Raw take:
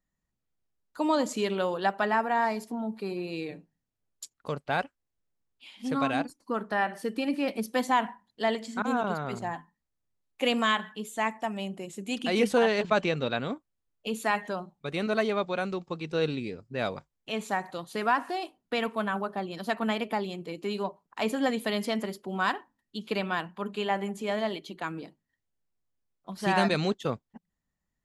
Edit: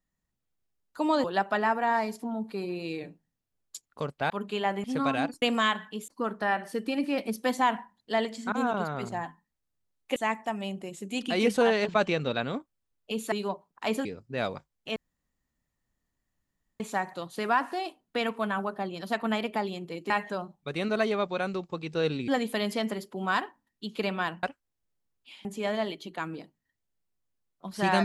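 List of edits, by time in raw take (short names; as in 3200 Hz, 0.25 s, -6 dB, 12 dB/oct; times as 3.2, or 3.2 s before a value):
1.24–1.72 cut
4.78–5.8 swap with 23.55–24.09
10.46–11.12 move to 6.38
14.28–16.46 swap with 20.67–21.4
17.37 insert room tone 1.84 s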